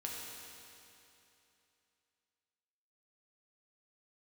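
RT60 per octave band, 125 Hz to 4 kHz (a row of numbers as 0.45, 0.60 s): 2.9, 2.9, 2.9, 2.9, 2.9, 2.8 s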